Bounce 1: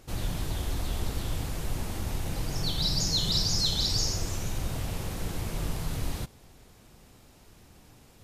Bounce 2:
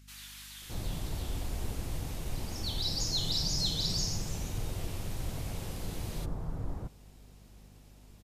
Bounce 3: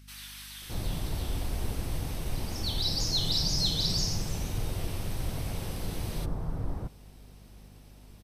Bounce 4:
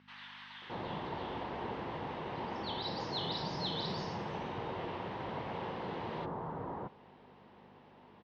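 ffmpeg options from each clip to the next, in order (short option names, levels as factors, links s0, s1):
-filter_complex "[0:a]acrossover=split=1400[s0][s1];[s0]adelay=620[s2];[s2][s1]amix=inputs=2:normalize=0,aeval=exprs='val(0)+0.00316*(sin(2*PI*50*n/s)+sin(2*PI*2*50*n/s)/2+sin(2*PI*3*50*n/s)/3+sin(2*PI*4*50*n/s)/4+sin(2*PI*5*50*n/s)/5)':c=same,volume=0.596"
-af "bandreject=f=7000:w=5.9,volume=1.5"
-af "highpass=290,equalizer=f=290:t=q:w=4:g=-5,equalizer=f=640:t=q:w=4:g=-3,equalizer=f=940:t=q:w=4:g=7,equalizer=f=1400:t=q:w=4:g=-3,equalizer=f=2400:t=q:w=4:g=-7,lowpass=f=2700:w=0.5412,lowpass=f=2700:w=1.3066,volume=1.58"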